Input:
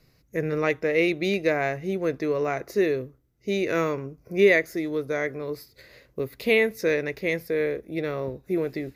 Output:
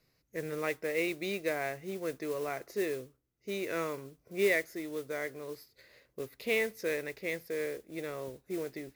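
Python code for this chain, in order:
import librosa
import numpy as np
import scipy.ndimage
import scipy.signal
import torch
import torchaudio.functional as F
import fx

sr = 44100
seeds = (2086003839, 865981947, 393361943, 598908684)

y = fx.low_shelf(x, sr, hz=230.0, db=-7.5)
y = fx.mod_noise(y, sr, seeds[0], snr_db=17)
y = F.gain(torch.from_numpy(y), -8.5).numpy()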